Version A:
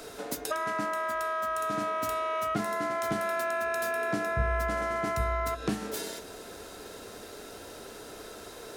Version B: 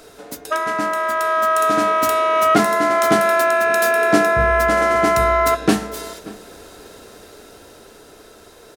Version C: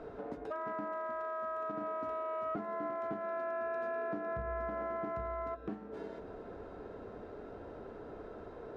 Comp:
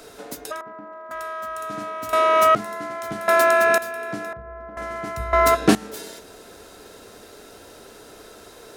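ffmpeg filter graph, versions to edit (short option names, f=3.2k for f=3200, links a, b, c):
-filter_complex "[2:a]asplit=2[a][b];[1:a]asplit=3[c][d][e];[0:a]asplit=6[f][g][h][i][j][k];[f]atrim=end=0.612[l];[a]atrim=start=0.608:end=1.112[m];[g]atrim=start=1.108:end=2.132[n];[c]atrim=start=2.128:end=2.552[o];[h]atrim=start=2.548:end=3.282[p];[d]atrim=start=3.278:end=3.782[q];[i]atrim=start=3.778:end=4.332[r];[b]atrim=start=4.328:end=4.772[s];[j]atrim=start=4.768:end=5.332[t];[e]atrim=start=5.328:end=5.752[u];[k]atrim=start=5.748[v];[l][m]acrossfade=d=0.004:c1=hsin:c2=hsin[w];[w][n]acrossfade=d=0.004:c1=hsin:c2=hsin[x];[x][o]acrossfade=d=0.004:c1=hsin:c2=hsin[y];[y][p]acrossfade=d=0.004:c1=hsin:c2=hsin[z];[z][q]acrossfade=d=0.004:c1=hsin:c2=hsin[aa];[aa][r]acrossfade=d=0.004:c1=hsin:c2=hsin[ab];[ab][s]acrossfade=d=0.004:c1=hsin:c2=hsin[ac];[ac][t]acrossfade=d=0.004:c1=hsin:c2=hsin[ad];[ad][u]acrossfade=d=0.004:c1=hsin:c2=hsin[ae];[ae][v]acrossfade=d=0.004:c1=hsin:c2=hsin"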